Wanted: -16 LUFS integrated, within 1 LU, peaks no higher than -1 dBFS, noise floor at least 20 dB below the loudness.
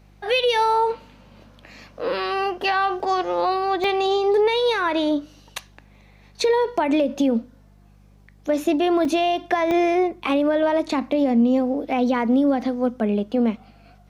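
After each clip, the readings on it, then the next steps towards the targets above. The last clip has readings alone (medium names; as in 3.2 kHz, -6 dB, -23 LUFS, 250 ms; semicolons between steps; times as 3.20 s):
dropouts 4; longest dropout 2.1 ms; hum 50 Hz; highest harmonic 200 Hz; hum level -50 dBFS; loudness -21.0 LUFS; peak level -8.5 dBFS; loudness target -16.0 LUFS
-> interpolate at 3.00/3.84/9.05/9.71 s, 2.1 ms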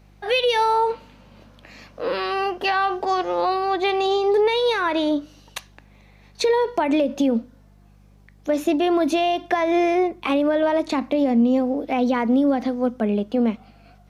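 dropouts 0; hum 50 Hz; highest harmonic 200 Hz; hum level -50 dBFS
-> de-hum 50 Hz, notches 4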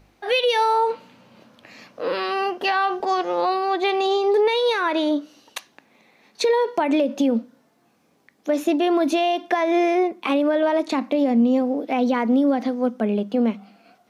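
hum not found; loudness -21.0 LUFS; peak level -8.5 dBFS; loudness target -16.0 LUFS
-> trim +5 dB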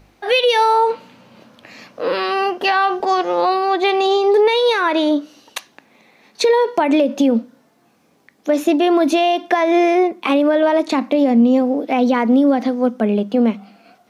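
loudness -16.0 LUFS; peak level -3.5 dBFS; noise floor -57 dBFS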